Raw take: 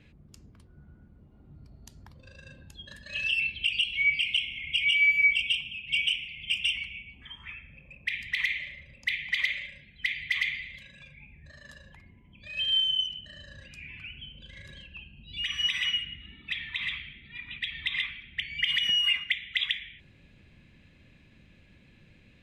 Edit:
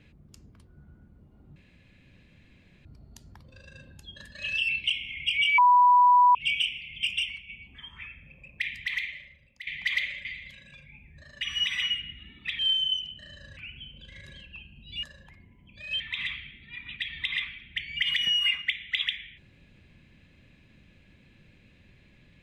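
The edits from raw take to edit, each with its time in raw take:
1.56 s: insert room tone 1.29 s
3.55–4.31 s: delete
5.05–5.82 s: bleep 984 Hz -14.5 dBFS
6.58–6.96 s: fade out, to -8 dB
8.12–9.14 s: fade out, to -16.5 dB
9.72–10.53 s: delete
11.69–12.66 s: swap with 15.44–16.62 s
13.64–13.98 s: delete

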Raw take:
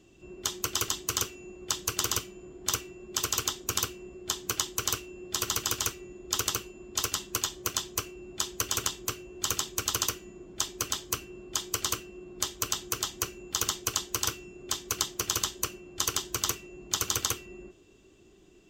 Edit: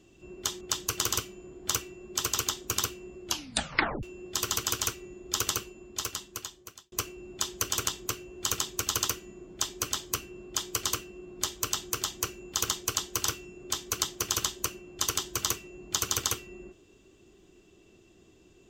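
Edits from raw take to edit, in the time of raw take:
0.61–1.60 s: delete
4.25 s: tape stop 0.77 s
6.53–7.91 s: fade out

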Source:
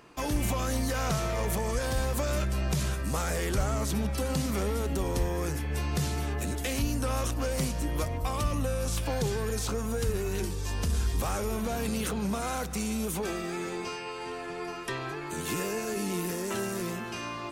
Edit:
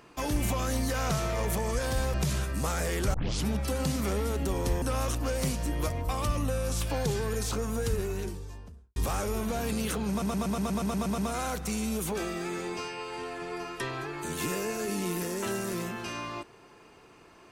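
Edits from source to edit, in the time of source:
2.14–2.64 s: delete
3.64 s: tape start 0.32 s
5.32–6.98 s: delete
10.00–11.12 s: studio fade out
12.26 s: stutter 0.12 s, 10 plays

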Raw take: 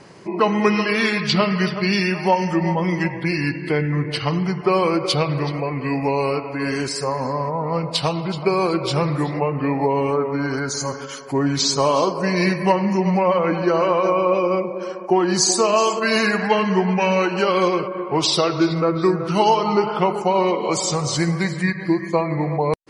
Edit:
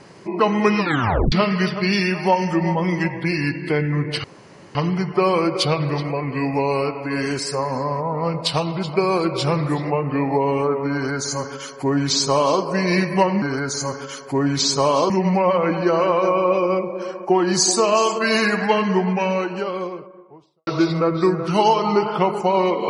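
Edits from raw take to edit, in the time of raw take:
0.79 s: tape stop 0.53 s
4.24 s: insert room tone 0.51 s
10.42–12.10 s: copy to 12.91 s
16.47–18.48 s: studio fade out

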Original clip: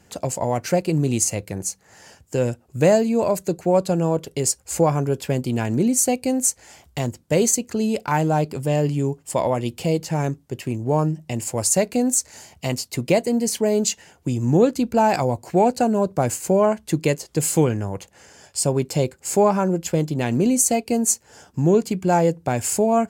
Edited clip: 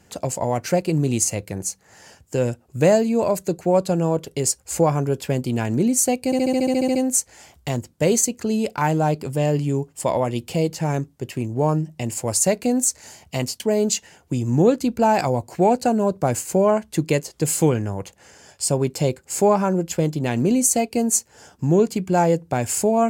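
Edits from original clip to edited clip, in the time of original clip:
6.25 s: stutter 0.07 s, 11 plays
12.90–13.55 s: delete

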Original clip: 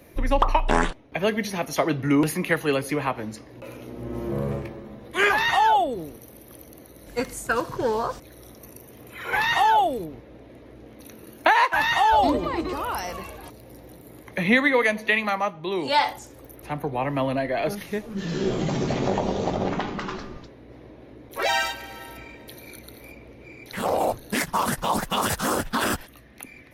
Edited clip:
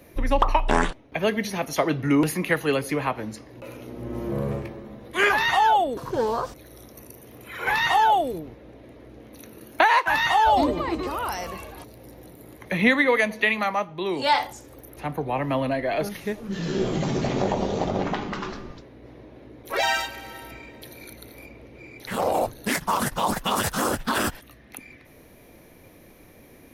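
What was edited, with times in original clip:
5.97–7.63 s: delete

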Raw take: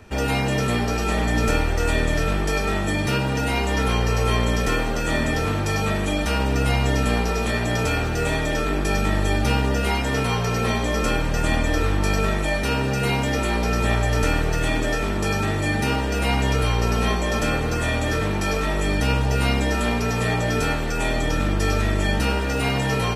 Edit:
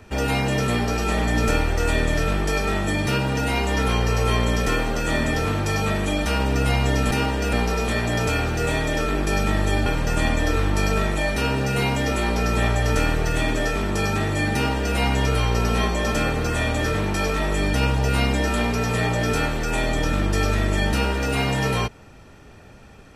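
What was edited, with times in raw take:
9.44–11.13 s: delete
15.81–16.23 s: copy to 7.11 s

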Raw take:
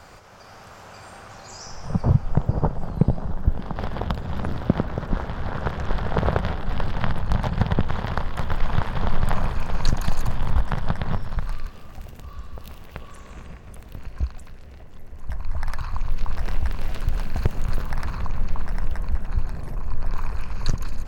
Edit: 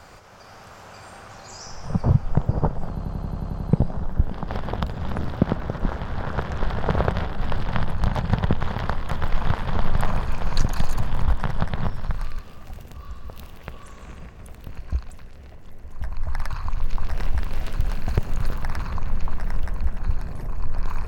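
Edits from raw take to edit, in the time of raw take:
2.90 s: stutter 0.09 s, 9 plays

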